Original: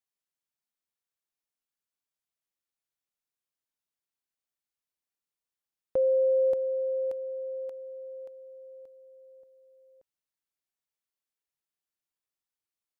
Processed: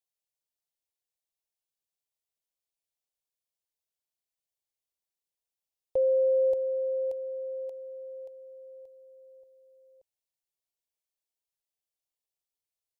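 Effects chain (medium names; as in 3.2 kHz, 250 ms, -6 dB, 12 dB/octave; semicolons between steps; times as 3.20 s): static phaser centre 580 Hz, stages 4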